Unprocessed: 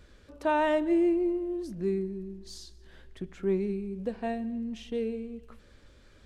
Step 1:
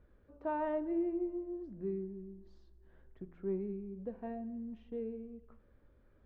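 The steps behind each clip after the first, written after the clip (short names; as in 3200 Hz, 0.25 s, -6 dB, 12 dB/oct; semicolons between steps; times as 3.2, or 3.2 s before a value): LPF 1200 Hz 12 dB/oct; de-hum 85.92 Hz, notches 20; gain -8.5 dB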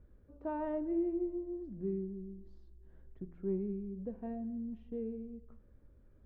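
low shelf 450 Hz +11.5 dB; gain -6.5 dB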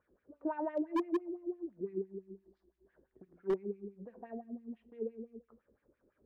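wah 5.9 Hz 330–2400 Hz, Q 2.7; wavefolder -32.5 dBFS; gain +8 dB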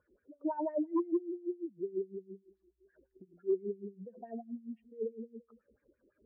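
spectral contrast raised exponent 2.1; gain +2 dB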